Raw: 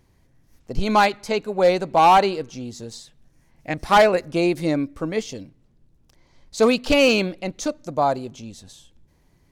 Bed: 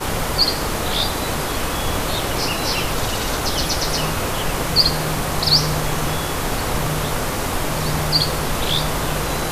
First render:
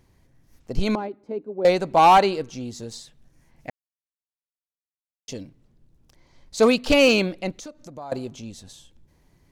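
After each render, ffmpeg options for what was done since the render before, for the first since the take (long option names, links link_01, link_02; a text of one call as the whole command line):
ffmpeg -i in.wav -filter_complex "[0:a]asettb=1/sr,asplit=3[link_01][link_02][link_03];[link_01]atrim=end=0.954[link_04];[link_02]atrim=start=0.95:end=1.65,asetpts=PTS-STARTPTS,afade=type=in:duration=0.004:curve=qsin,afade=type=out:start_time=0.696:duration=0.004:curve=qsin,bandpass=frequency=310:width_type=q:width=2.7[link_05];[link_03]atrim=start=1.646[link_06];[link_04][link_05]acrossfade=duration=0.004:curve1=hsin:curve2=qsin[link_07];[link_07][link_06]acrossfade=duration=0.004:curve1=qsin:curve2=hsin,asettb=1/sr,asplit=3[link_08][link_09][link_10];[link_08]atrim=end=7.594[link_11];[link_09]atrim=start=7.59:end=8.12,asetpts=PTS-STARTPTS,afade=type=in:duration=0.004:curve=qsin,afade=type=out:start_time=0.526:duration=0.004:curve=qsin,acompressor=threshold=-40dB:ratio=3:attack=3.2:release=140:knee=1:detection=peak[link_12];[link_10]atrim=start=8.116[link_13];[link_11][link_12]acrossfade=duration=0.004:curve1=hsin:curve2=qsin[link_14];[link_14][link_13]acrossfade=duration=0.004:curve1=qsin:curve2=hsin,asplit=3[link_15][link_16][link_17];[link_15]atrim=end=3.7,asetpts=PTS-STARTPTS,afade=type=out:start_time=3.696:duration=0.004:curve=hsin[link_18];[link_16]atrim=start=3.7:end=5.28,asetpts=PTS-STARTPTS,volume=0[link_19];[link_17]atrim=start=5.28,asetpts=PTS-STARTPTS,afade=type=in:duration=0.004:curve=hsin[link_20];[link_18][link_19][link_20]concat=n=3:v=0:a=1" out.wav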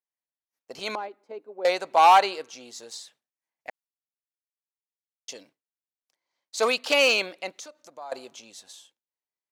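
ffmpeg -i in.wav -af "highpass=680,agate=range=-33dB:threshold=-52dB:ratio=3:detection=peak" out.wav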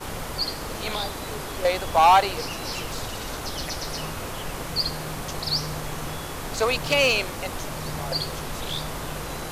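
ffmpeg -i in.wav -i bed.wav -filter_complex "[1:a]volume=-10.5dB[link_01];[0:a][link_01]amix=inputs=2:normalize=0" out.wav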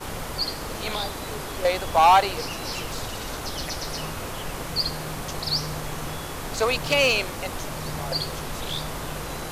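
ffmpeg -i in.wav -af anull out.wav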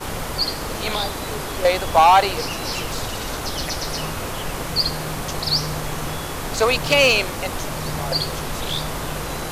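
ffmpeg -i in.wav -af "volume=5dB,alimiter=limit=-3dB:level=0:latency=1" out.wav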